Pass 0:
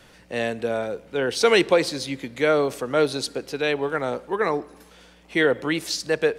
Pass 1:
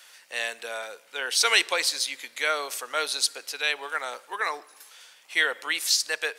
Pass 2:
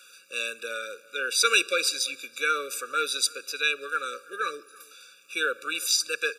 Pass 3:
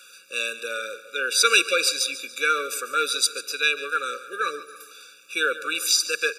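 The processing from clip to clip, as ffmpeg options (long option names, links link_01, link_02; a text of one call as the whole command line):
ffmpeg -i in.wav -af "highpass=1100,highshelf=frequency=4800:gain=10" out.wav
ffmpeg -i in.wav -filter_complex "[0:a]asplit=2[link_01][link_02];[link_02]adelay=332.4,volume=-23dB,highshelf=frequency=4000:gain=-7.48[link_03];[link_01][link_03]amix=inputs=2:normalize=0,afftfilt=real='re*eq(mod(floor(b*sr/1024/570),2),0)':imag='im*eq(mod(floor(b*sr/1024/570),2),0)':win_size=1024:overlap=0.75,volume=2.5dB" out.wav
ffmpeg -i in.wav -af "aecho=1:1:143|286|429|572:0.178|0.0782|0.0344|0.0151,volume=3.5dB" out.wav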